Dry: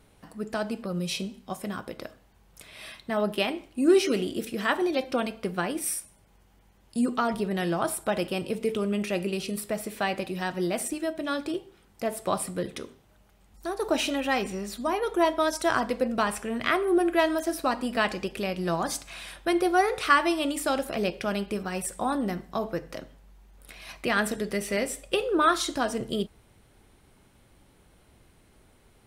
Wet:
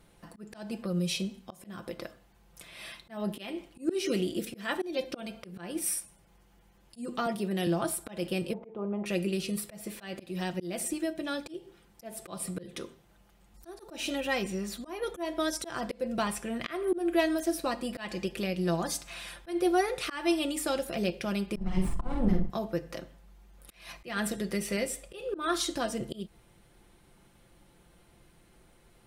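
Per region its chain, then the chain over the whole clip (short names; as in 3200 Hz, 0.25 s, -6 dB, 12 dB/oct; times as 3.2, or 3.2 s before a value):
7.26–7.67 HPF 160 Hz + high shelf 8400 Hz +4.5 dB + three-band expander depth 40%
8.53–9.06 synth low-pass 850 Hz, resonance Q 3.6 + low shelf 250 Hz -10 dB
21.56–22.5 minimum comb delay 0.98 ms + tilt -4 dB/oct + doubler 48 ms -4.5 dB
whole clip: comb 5.8 ms, depth 46%; dynamic EQ 1100 Hz, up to -6 dB, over -39 dBFS, Q 0.88; auto swell 0.209 s; gain -2 dB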